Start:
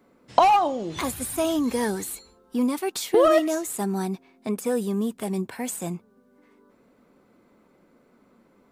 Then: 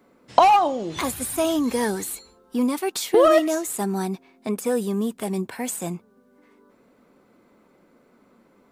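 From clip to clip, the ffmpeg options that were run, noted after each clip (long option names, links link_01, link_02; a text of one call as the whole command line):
ffmpeg -i in.wav -af "lowshelf=frequency=190:gain=-3.5,volume=2.5dB" out.wav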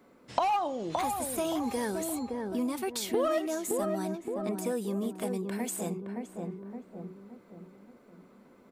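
ffmpeg -i in.wav -filter_complex "[0:a]asplit=2[link_01][link_02];[link_02]adelay=568,lowpass=frequency=840:poles=1,volume=-5dB,asplit=2[link_03][link_04];[link_04]adelay=568,lowpass=frequency=840:poles=1,volume=0.48,asplit=2[link_05][link_06];[link_06]adelay=568,lowpass=frequency=840:poles=1,volume=0.48,asplit=2[link_07][link_08];[link_08]adelay=568,lowpass=frequency=840:poles=1,volume=0.48,asplit=2[link_09][link_10];[link_10]adelay=568,lowpass=frequency=840:poles=1,volume=0.48,asplit=2[link_11][link_12];[link_12]adelay=568,lowpass=frequency=840:poles=1,volume=0.48[link_13];[link_03][link_05][link_07][link_09][link_11][link_13]amix=inputs=6:normalize=0[link_14];[link_01][link_14]amix=inputs=2:normalize=0,acompressor=threshold=-33dB:ratio=2,volume=-1.5dB" out.wav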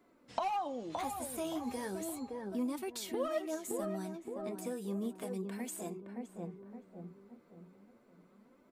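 ffmpeg -i in.wav -af "flanger=delay=2.9:depth=9.8:regen=43:speed=0.34:shape=sinusoidal,volume=-3.5dB" out.wav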